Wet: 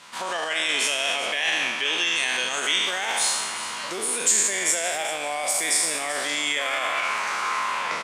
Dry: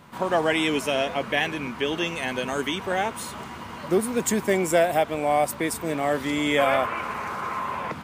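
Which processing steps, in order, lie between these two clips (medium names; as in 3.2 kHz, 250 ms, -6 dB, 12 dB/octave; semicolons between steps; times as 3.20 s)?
spectral sustain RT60 1.13 s; 2.86–3.35 s: word length cut 8-bit, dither triangular; peak limiter -17.5 dBFS, peak gain reduction 11 dB; in parallel at -3 dB: gain riding within 3 dB; on the sum: frequency weighting ITU-R 468; on a send: delay 389 ms -13.5 dB; on the sum: trim -5 dB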